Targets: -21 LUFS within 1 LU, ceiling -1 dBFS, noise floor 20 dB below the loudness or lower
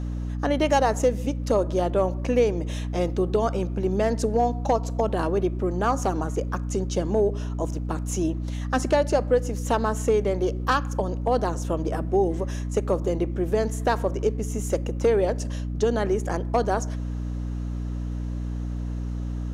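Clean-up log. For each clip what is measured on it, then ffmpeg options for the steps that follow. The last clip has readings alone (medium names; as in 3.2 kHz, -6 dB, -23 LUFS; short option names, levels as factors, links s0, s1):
hum 60 Hz; highest harmonic 300 Hz; hum level -27 dBFS; loudness -25.5 LUFS; peak level -8.5 dBFS; loudness target -21.0 LUFS
-> -af "bandreject=f=60:t=h:w=6,bandreject=f=120:t=h:w=6,bandreject=f=180:t=h:w=6,bandreject=f=240:t=h:w=6,bandreject=f=300:t=h:w=6"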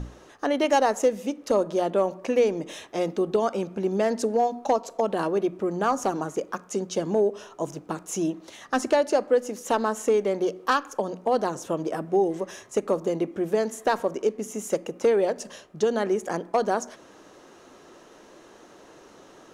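hum not found; loudness -26.0 LUFS; peak level -10.5 dBFS; loudness target -21.0 LUFS
-> -af "volume=1.78"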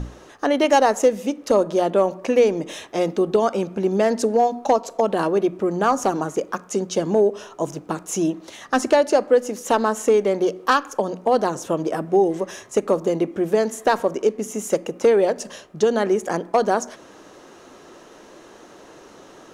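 loudness -21.0 LUFS; peak level -5.5 dBFS; noise floor -46 dBFS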